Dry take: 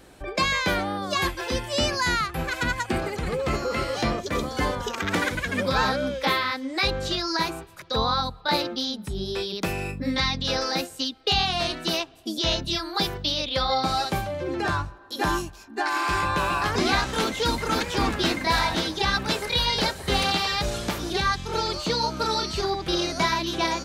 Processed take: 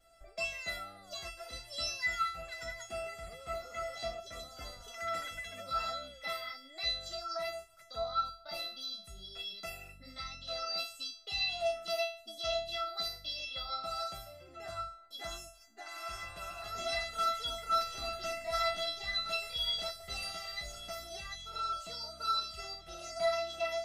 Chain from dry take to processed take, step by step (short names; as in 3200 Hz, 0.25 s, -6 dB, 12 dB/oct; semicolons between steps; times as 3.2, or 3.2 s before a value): resonator 670 Hz, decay 0.41 s, mix 100%; gain +7.5 dB